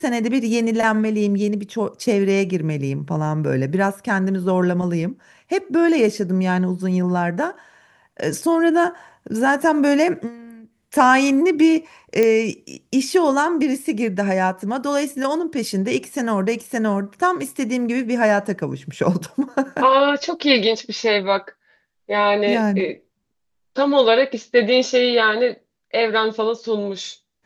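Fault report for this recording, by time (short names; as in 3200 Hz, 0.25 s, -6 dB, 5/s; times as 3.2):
12.23 pop -7 dBFS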